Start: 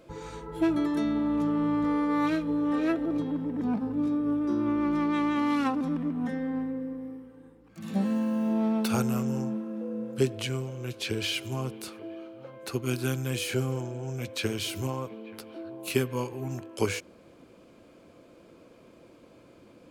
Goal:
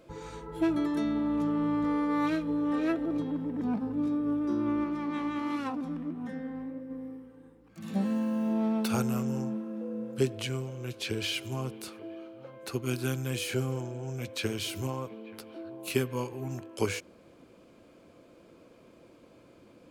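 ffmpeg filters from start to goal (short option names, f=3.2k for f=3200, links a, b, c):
-filter_complex "[0:a]asplit=3[a][b][c];[a]afade=t=out:st=4.83:d=0.02[d];[b]flanger=delay=8.9:depth=8.8:regen=61:speed=1.6:shape=sinusoidal,afade=t=in:st=4.83:d=0.02,afade=t=out:st=6.89:d=0.02[e];[c]afade=t=in:st=6.89:d=0.02[f];[d][e][f]amix=inputs=3:normalize=0,volume=-2dB"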